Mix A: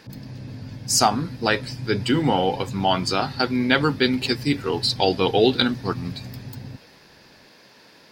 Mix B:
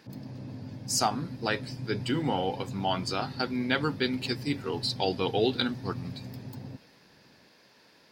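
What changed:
speech -8.5 dB; background: add HPF 200 Hz 6 dB/oct

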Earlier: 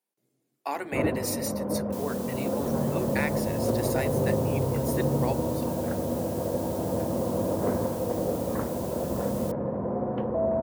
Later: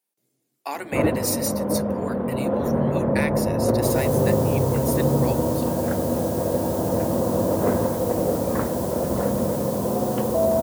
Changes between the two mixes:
first sound +5.5 dB; second sound: entry +1.90 s; master: add high shelf 2600 Hz +7.5 dB

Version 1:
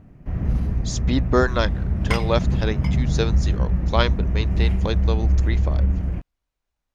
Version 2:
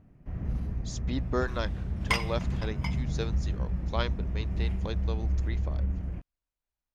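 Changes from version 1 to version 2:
speech -11.0 dB; first sound -10.0 dB

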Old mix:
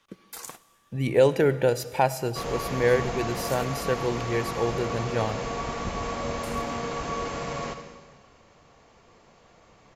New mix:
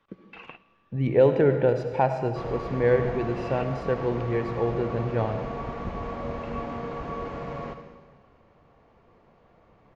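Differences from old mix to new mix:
speech: send +10.5 dB; first sound: add synth low-pass 2700 Hz, resonance Q 16; master: add tape spacing loss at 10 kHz 36 dB

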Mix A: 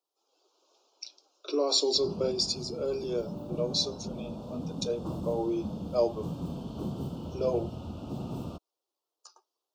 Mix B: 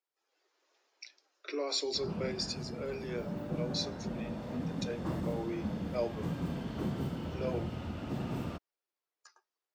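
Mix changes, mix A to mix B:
speech -8.0 dB; master: remove Butterworth band-stop 1900 Hz, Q 1

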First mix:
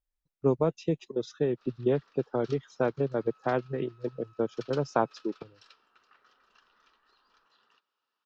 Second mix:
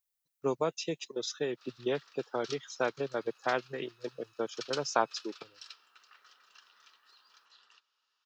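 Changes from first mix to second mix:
second sound: add brick-wall FIR high-pass 2000 Hz; master: add tilt +4.5 dB/oct

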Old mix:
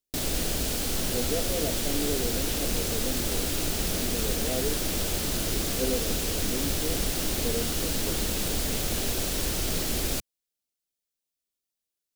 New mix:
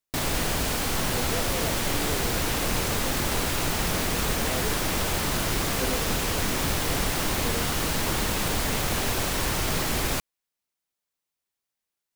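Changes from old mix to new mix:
speech -6.0 dB; master: add graphic EQ 125/1000/2000 Hz +6/+11/+6 dB

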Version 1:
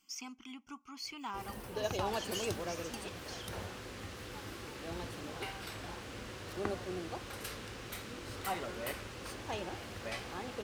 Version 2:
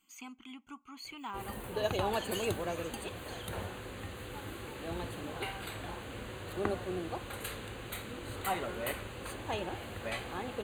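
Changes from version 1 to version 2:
first sound +3.5 dB; master: add Butterworth band-stop 5400 Hz, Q 2.4

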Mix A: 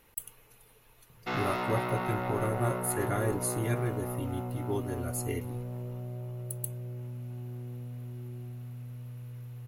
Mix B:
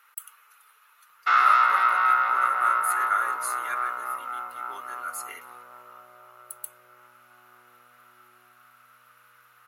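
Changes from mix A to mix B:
background +5.0 dB; master: add resonant high-pass 1300 Hz, resonance Q 8

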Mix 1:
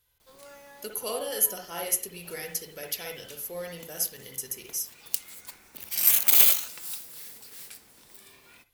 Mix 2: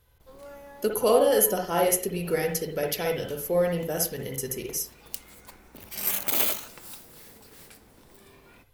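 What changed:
speech +8.0 dB; master: add tilt shelf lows +7.5 dB, about 1500 Hz

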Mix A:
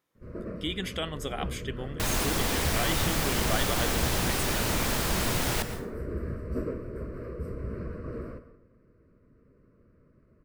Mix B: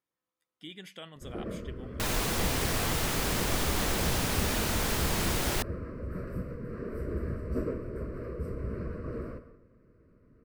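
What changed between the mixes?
speech -12.0 dB; first sound: entry +1.00 s; second sound: send off

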